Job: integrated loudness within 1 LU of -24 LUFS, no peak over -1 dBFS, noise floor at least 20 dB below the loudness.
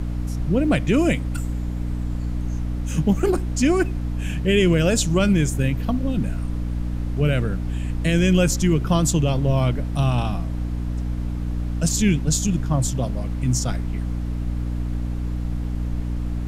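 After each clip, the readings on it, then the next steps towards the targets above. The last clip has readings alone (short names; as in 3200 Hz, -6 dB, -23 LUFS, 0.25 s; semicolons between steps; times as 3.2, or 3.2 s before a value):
hum 60 Hz; harmonics up to 300 Hz; hum level -23 dBFS; noise floor -26 dBFS; noise floor target -43 dBFS; loudness -22.5 LUFS; peak -7.0 dBFS; loudness target -24.0 LUFS
-> de-hum 60 Hz, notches 5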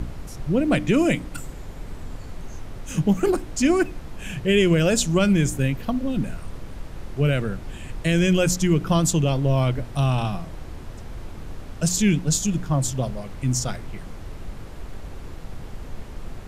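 hum none; noise floor -37 dBFS; noise floor target -42 dBFS
-> noise print and reduce 6 dB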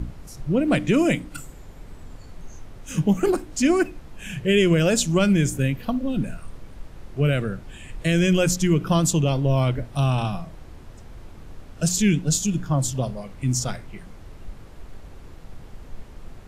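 noise floor -43 dBFS; loudness -22.0 LUFS; peak -8.5 dBFS; loudness target -24.0 LUFS
-> gain -2 dB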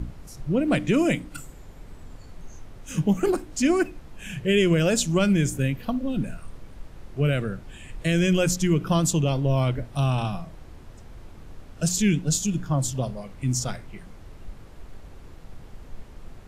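loudness -24.0 LUFS; peak -10.5 dBFS; noise floor -45 dBFS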